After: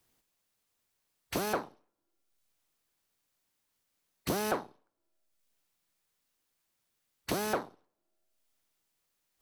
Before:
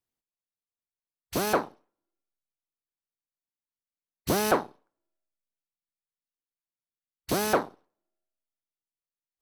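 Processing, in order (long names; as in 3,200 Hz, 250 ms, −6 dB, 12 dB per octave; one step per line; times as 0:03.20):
multiband upward and downward compressor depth 70%
level −5.5 dB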